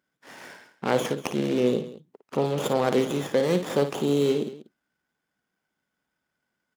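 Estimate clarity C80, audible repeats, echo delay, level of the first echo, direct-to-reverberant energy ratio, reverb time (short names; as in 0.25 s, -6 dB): none, 2, 56 ms, -9.5 dB, none, none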